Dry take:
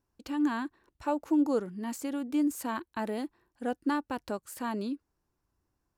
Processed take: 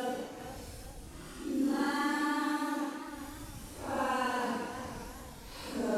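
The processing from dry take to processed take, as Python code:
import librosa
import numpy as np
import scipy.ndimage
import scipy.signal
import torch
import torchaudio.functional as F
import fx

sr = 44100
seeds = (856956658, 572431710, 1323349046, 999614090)

p1 = fx.delta_mod(x, sr, bps=64000, step_db=-40.0)
p2 = fx.hpss(p1, sr, part='harmonic', gain_db=-8)
p3 = fx.paulstretch(p2, sr, seeds[0], factor=9.9, window_s=0.05, from_s=3.71)
p4 = p3 + fx.echo_split(p3, sr, split_hz=720.0, low_ms=300, high_ms=198, feedback_pct=52, wet_db=-13.5, dry=0)
p5 = fx.echo_warbled(p4, sr, ms=405, feedback_pct=36, rate_hz=2.8, cents=87, wet_db=-11)
y = p5 * 10.0 ** (2.0 / 20.0)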